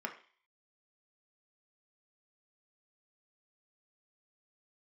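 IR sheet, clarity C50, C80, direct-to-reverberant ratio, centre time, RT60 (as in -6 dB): 11.0 dB, 15.5 dB, 2.5 dB, 13 ms, 0.40 s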